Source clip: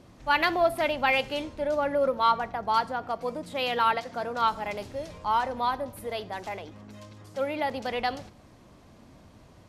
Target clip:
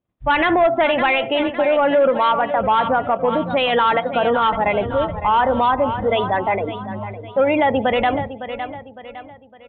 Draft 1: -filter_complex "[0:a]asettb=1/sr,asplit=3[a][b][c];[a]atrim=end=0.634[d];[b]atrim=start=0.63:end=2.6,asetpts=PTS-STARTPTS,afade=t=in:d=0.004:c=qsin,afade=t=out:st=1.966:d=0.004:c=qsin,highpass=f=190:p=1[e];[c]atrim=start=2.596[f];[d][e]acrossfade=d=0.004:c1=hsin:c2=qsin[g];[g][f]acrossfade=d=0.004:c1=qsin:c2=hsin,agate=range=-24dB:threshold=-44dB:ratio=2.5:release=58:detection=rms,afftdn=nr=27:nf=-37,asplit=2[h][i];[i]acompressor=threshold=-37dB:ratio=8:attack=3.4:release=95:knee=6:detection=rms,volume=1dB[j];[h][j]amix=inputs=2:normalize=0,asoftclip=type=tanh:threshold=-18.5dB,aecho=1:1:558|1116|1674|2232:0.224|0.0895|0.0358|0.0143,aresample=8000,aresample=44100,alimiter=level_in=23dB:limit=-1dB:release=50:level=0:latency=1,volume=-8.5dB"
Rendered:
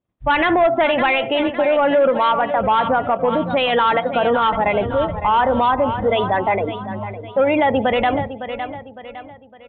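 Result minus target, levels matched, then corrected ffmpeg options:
compressor: peak gain reduction -6.5 dB
-filter_complex "[0:a]asettb=1/sr,asplit=3[a][b][c];[a]atrim=end=0.634[d];[b]atrim=start=0.63:end=2.6,asetpts=PTS-STARTPTS,afade=t=in:d=0.004:c=qsin,afade=t=out:st=1.966:d=0.004:c=qsin,highpass=f=190:p=1[e];[c]atrim=start=2.596[f];[d][e]acrossfade=d=0.004:c1=hsin:c2=qsin[g];[g][f]acrossfade=d=0.004:c1=qsin:c2=hsin,agate=range=-24dB:threshold=-44dB:ratio=2.5:release=58:detection=rms,afftdn=nr=27:nf=-37,asplit=2[h][i];[i]acompressor=threshold=-44.5dB:ratio=8:attack=3.4:release=95:knee=6:detection=rms,volume=1dB[j];[h][j]amix=inputs=2:normalize=0,asoftclip=type=tanh:threshold=-18.5dB,aecho=1:1:558|1116|1674|2232:0.224|0.0895|0.0358|0.0143,aresample=8000,aresample=44100,alimiter=level_in=23dB:limit=-1dB:release=50:level=0:latency=1,volume=-8.5dB"

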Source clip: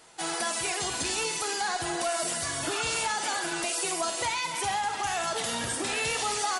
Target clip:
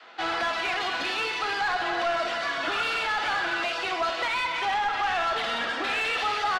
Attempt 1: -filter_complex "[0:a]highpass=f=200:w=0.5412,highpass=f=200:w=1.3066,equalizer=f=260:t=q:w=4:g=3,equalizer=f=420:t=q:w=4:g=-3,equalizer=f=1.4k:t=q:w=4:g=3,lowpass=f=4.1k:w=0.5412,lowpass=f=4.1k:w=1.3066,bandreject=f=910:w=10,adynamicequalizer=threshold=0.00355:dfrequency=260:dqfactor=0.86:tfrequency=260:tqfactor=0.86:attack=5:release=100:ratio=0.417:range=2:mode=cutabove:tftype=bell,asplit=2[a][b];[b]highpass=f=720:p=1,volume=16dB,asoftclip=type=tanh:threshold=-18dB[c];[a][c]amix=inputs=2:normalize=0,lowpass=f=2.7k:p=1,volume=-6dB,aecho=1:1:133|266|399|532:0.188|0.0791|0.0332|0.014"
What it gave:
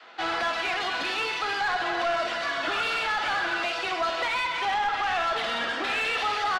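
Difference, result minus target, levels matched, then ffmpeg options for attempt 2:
echo 46 ms early
-filter_complex "[0:a]highpass=f=200:w=0.5412,highpass=f=200:w=1.3066,equalizer=f=260:t=q:w=4:g=3,equalizer=f=420:t=q:w=4:g=-3,equalizer=f=1.4k:t=q:w=4:g=3,lowpass=f=4.1k:w=0.5412,lowpass=f=4.1k:w=1.3066,bandreject=f=910:w=10,adynamicequalizer=threshold=0.00355:dfrequency=260:dqfactor=0.86:tfrequency=260:tqfactor=0.86:attack=5:release=100:ratio=0.417:range=2:mode=cutabove:tftype=bell,asplit=2[a][b];[b]highpass=f=720:p=1,volume=16dB,asoftclip=type=tanh:threshold=-18dB[c];[a][c]amix=inputs=2:normalize=0,lowpass=f=2.7k:p=1,volume=-6dB,aecho=1:1:179|358|537|716:0.188|0.0791|0.0332|0.014"

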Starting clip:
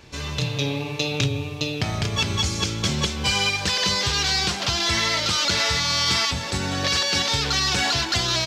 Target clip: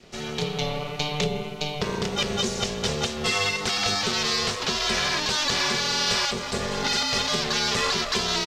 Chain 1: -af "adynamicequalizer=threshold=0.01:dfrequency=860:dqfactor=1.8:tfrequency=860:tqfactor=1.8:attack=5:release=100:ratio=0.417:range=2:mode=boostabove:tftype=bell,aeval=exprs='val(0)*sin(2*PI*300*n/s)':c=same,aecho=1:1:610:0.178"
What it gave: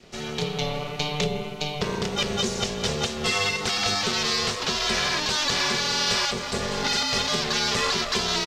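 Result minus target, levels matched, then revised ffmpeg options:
echo-to-direct +8 dB
-af "adynamicequalizer=threshold=0.01:dfrequency=860:dqfactor=1.8:tfrequency=860:tqfactor=1.8:attack=5:release=100:ratio=0.417:range=2:mode=boostabove:tftype=bell,aeval=exprs='val(0)*sin(2*PI*300*n/s)':c=same,aecho=1:1:610:0.0708"

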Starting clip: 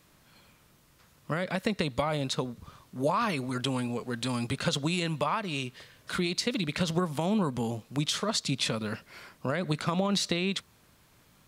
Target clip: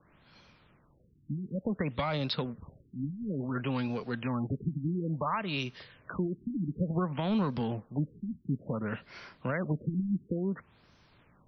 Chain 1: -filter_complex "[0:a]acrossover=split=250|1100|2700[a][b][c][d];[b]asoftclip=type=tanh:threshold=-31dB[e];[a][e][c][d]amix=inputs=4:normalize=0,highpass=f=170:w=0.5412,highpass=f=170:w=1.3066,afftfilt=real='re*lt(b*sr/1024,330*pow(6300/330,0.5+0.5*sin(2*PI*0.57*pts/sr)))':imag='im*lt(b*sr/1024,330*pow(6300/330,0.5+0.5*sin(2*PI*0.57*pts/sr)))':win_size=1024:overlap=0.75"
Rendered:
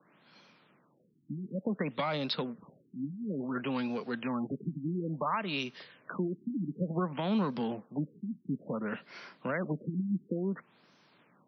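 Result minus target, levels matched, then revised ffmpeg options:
125 Hz band -3.5 dB
-filter_complex "[0:a]acrossover=split=250|1100|2700[a][b][c][d];[b]asoftclip=type=tanh:threshold=-31dB[e];[a][e][c][d]amix=inputs=4:normalize=0,afftfilt=real='re*lt(b*sr/1024,330*pow(6300/330,0.5+0.5*sin(2*PI*0.57*pts/sr)))':imag='im*lt(b*sr/1024,330*pow(6300/330,0.5+0.5*sin(2*PI*0.57*pts/sr)))':win_size=1024:overlap=0.75"

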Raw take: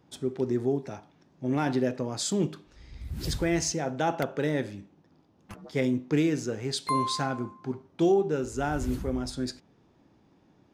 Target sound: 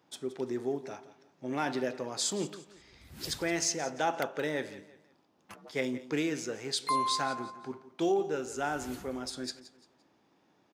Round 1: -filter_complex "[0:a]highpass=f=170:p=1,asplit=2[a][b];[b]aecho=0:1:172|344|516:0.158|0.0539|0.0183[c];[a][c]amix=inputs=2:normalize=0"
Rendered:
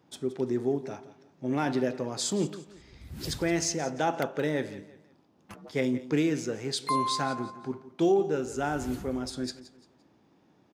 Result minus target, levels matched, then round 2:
125 Hz band +5.5 dB
-filter_complex "[0:a]highpass=f=620:p=1,asplit=2[a][b];[b]aecho=0:1:172|344|516:0.158|0.0539|0.0183[c];[a][c]amix=inputs=2:normalize=0"

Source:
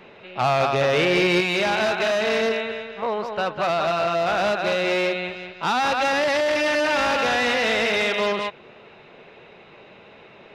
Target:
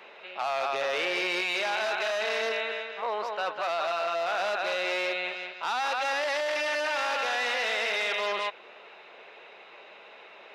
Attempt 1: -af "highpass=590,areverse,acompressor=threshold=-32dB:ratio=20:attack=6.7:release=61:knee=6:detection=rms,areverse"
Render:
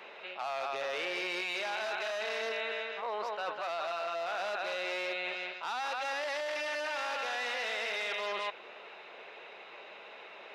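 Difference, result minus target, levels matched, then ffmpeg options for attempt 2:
compressor: peak gain reduction +6.5 dB
-af "highpass=590,areverse,acompressor=threshold=-25dB:ratio=20:attack=6.7:release=61:knee=6:detection=rms,areverse"

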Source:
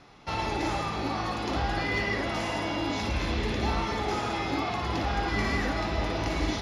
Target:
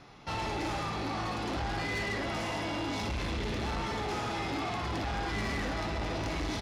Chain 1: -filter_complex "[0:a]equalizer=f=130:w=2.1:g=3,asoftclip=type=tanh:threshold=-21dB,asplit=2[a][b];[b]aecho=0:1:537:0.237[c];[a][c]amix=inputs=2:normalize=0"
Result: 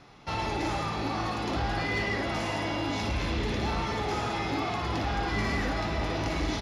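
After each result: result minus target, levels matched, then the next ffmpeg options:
soft clip: distortion -10 dB; echo-to-direct +9.5 dB
-filter_complex "[0:a]equalizer=f=130:w=2.1:g=3,asoftclip=type=tanh:threshold=-30dB,asplit=2[a][b];[b]aecho=0:1:537:0.237[c];[a][c]amix=inputs=2:normalize=0"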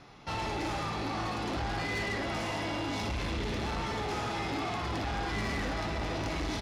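echo-to-direct +9.5 dB
-filter_complex "[0:a]equalizer=f=130:w=2.1:g=3,asoftclip=type=tanh:threshold=-30dB,asplit=2[a][b];[b]aecho=0:1:537:0.0794[c];[a][c]amix=inputs=2:normalize=0"

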